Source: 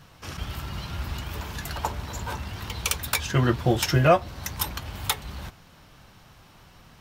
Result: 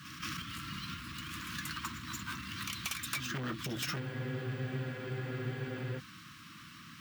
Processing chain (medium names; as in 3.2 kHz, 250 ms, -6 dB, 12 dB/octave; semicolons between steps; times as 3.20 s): Chebyshev band-stop 320–1100 Hz, order 4; pre-echo 183 ms -12.5 dB; hard clipper -24 dBFS, distortion -8 dB; compression 10:1, threshold -37 dBFS, peak gain reduction 11.5 dB; high-pass 180 Hz 12 dB/octave; treble shelf 11 kHz -5.5 dB; careless resampling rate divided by 2×, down none, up hold; spectral freeze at 4.01 s, 1.98 s; trim +4.5 dB